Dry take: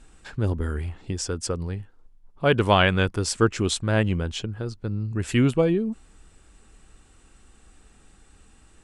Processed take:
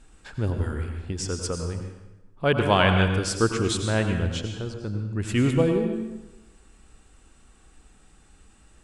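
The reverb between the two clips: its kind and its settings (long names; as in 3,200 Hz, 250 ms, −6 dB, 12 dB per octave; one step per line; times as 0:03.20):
dense smooth reverb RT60 1 s, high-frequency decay 0.85×, pre-delay 80 ms, DRR 4.5 dB
level −2 dB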